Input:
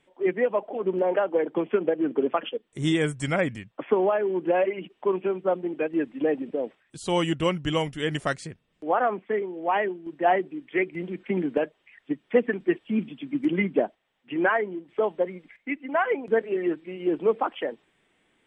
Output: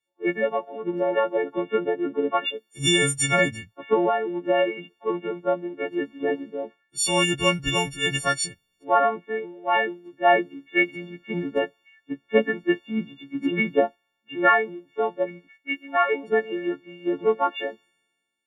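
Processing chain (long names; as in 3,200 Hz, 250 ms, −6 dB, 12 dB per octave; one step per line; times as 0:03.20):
every partial snapped to a pitch grid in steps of 4 semitones
multiband upward and downward expander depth 70%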